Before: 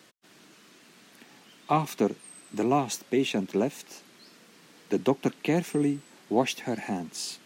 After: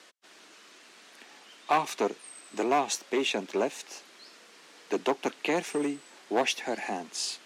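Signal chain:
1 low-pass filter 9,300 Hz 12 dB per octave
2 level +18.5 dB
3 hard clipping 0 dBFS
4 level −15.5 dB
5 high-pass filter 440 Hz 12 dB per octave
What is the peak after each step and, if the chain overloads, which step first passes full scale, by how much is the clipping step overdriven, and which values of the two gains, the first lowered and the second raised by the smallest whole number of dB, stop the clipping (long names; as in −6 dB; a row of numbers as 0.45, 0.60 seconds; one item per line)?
−10.0, +8.5, 0.0, −15.5, −11.5 dBFS
step 2, 8.5 dB
step 2 +9.5 dB, step 4 −6.5 dB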